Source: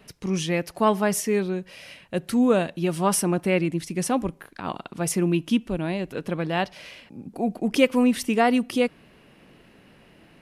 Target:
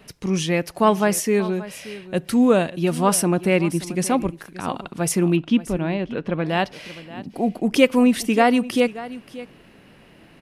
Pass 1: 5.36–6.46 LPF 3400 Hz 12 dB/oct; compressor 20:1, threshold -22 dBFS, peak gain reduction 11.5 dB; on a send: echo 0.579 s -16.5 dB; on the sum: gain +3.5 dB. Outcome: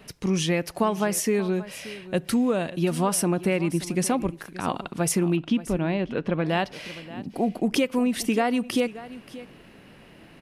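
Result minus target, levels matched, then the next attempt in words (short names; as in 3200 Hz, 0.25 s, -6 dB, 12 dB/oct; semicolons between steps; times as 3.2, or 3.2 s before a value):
compressor: peak gain reduction +11.5 dB
5.36–6.46 LPF 3400 Hz 12 dB/oct; on a send: echo 0.579 s -16.5 dB; on the sum: gain +3.5 dB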